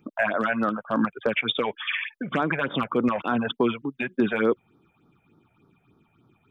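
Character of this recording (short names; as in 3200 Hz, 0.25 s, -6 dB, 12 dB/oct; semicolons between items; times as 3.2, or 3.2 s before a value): phasing stages 6, 3.4 Hz, lowest notch 290–2700 Hz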